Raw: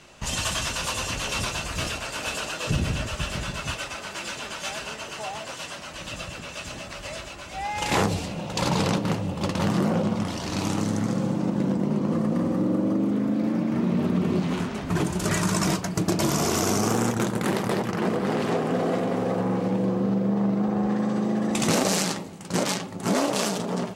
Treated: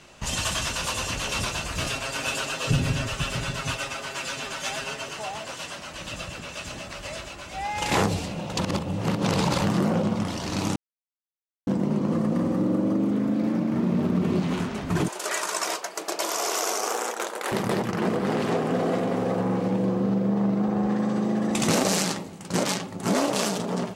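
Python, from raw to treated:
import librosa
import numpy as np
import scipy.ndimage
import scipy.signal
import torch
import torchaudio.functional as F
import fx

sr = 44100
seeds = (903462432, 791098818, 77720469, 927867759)

y = fx.comb(x, sr, ms=7.4, depth=0.65, at=(1.86, 5.13))
y = fx.median_filter(y, sr, points=15, at=(13.58, 14.24))
y = fx.highpass(y, sr, hz=460.0, slope=24, at=(15.08, 17.52))
y = fx.edit(y, sr, fx.reverse_span(start_s=8.59, length_s=1.02),
    fx.silence(start_s=10.76, length_s=0.91), tone=tone)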